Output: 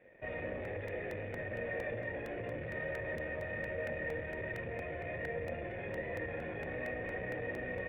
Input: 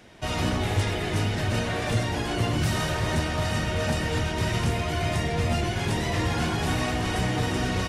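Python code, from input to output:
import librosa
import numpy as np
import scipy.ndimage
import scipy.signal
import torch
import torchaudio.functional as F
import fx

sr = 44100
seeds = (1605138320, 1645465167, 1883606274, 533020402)

y = fx.leveller(x, sr, passes=3)
y = fx.formant_cascade(y, sr, vowel='e')
y = fx.buffer_crackle(y, sr, first_s=0.65, period_s=0.23, block=64, kind='repeat')
y = y * librosa.db_to_amplitude(-6.0)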